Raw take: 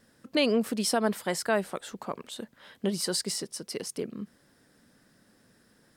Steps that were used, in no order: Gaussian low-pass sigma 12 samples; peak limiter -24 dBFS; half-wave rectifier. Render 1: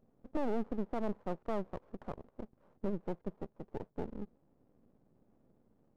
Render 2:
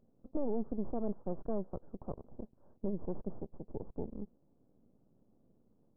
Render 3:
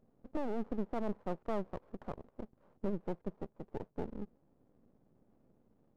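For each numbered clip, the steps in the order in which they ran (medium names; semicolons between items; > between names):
Gaussian low-pass > half-wave rectifier > peak limiter; half-wave rectifier > Gaussian low-pass > peak limiter; Gaussian low-pass > peak limiter > half-wave rectifier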